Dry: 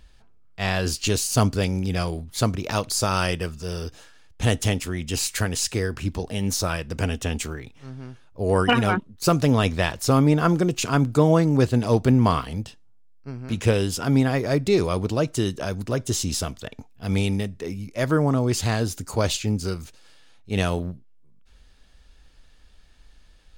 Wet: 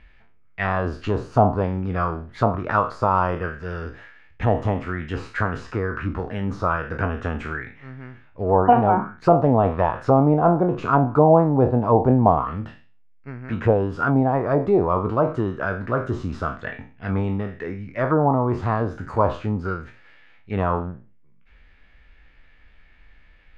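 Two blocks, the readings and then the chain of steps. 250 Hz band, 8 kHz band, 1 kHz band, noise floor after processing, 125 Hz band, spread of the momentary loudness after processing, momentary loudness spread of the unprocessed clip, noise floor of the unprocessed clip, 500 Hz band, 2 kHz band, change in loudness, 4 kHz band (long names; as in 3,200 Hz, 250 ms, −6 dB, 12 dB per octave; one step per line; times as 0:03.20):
+0.5 dB, below −25 dB, +7.5 dB, −51 dBFS, −0.5 dB, 15 LU, 13 LU, −51 dBFS, +4.0 dB, 0.0 dB, +1.5 dB, below −15 dB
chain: peak hold with a decay on every bin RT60 0.37 s
envelope-controlled low-pass 770–2,200 Hz down, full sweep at −14.5 dBFS
level −1 dB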